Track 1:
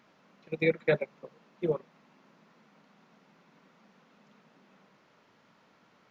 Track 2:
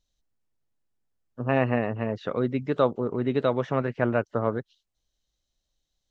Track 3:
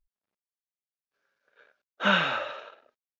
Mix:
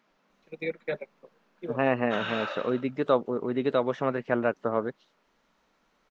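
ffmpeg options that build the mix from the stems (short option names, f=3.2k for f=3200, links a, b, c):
-filter_complex "[0:a]volume=-5.5dB[a];[1:a]adelay=300,volume=-0.5dB[b];[2:a]alimiter=limit=-22dB:level=0:latency=1,adelay=100,volume=-2dB[c];[a][b][c]amix=inputs=3:normalize=0,equalizer=f=100:w=1.3:g=-12"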